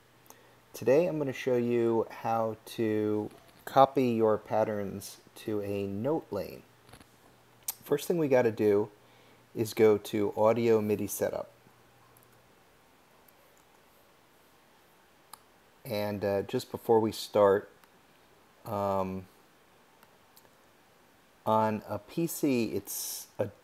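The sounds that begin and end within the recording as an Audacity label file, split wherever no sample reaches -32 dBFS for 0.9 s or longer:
7.680000	11.410000	sound
15.340000	17.600000	sound
18.680000	19.200000	sound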